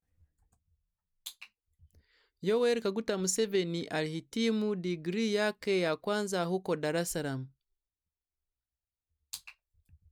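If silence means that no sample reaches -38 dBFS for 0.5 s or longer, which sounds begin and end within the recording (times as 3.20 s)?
1.26–1.44 s
2.43–7.44 s
9.33–9.49 s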